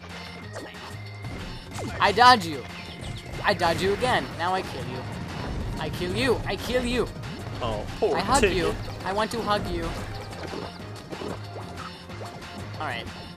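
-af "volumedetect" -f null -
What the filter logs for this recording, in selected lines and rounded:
mean_volume: -27.1 dB
max_volume: -5.5 dB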